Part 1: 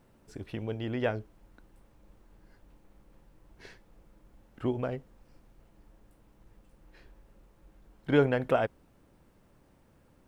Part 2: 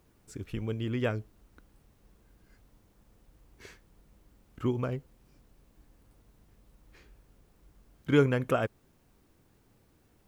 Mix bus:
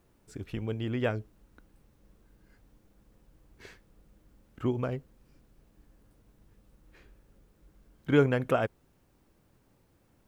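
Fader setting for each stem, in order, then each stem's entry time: −7.5, −3.5 decibels; 0.00, 0.00 seconds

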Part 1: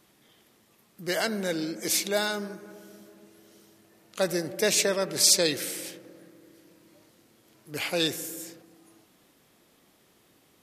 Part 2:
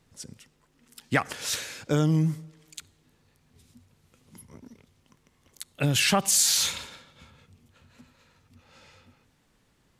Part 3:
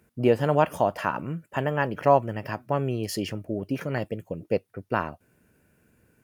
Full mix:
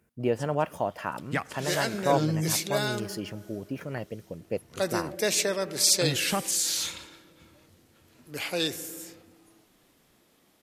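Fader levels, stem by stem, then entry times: −2.0, −5.5, −6.0 decibels; 0.60, 0.20, 0.00 seconds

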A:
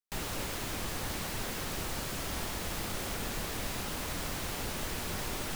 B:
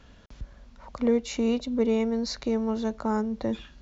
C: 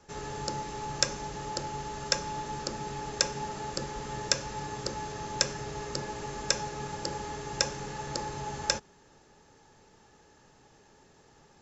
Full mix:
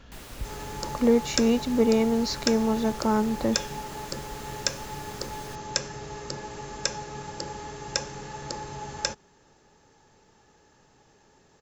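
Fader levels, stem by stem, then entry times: −7.5, +3.0, −0.5 decibels; 0.00, 0.00, 0.35 seconds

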